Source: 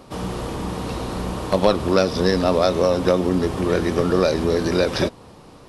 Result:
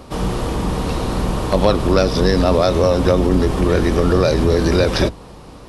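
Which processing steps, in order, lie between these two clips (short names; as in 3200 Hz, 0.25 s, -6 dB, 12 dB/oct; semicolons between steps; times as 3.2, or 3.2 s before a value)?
octaver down 2 oct, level 0 dB; in parallel at +2 dB: limiter -12.5 dBFS, peak gain reduction 10 dB; on the sum: gain -2 dB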